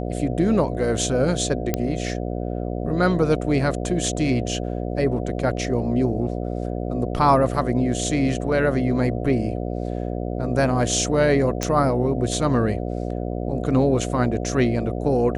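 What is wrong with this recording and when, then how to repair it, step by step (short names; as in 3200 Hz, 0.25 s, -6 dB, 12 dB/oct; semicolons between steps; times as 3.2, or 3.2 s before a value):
buzz 60 Hz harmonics 12 -27 dBFS
1.74 pop -7 dBFS
11.63 pop -8 dBFS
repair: de-click; de-hum 60 Hz, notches 12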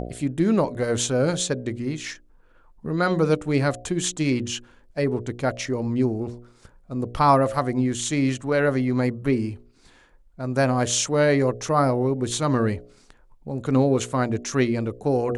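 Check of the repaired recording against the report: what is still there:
none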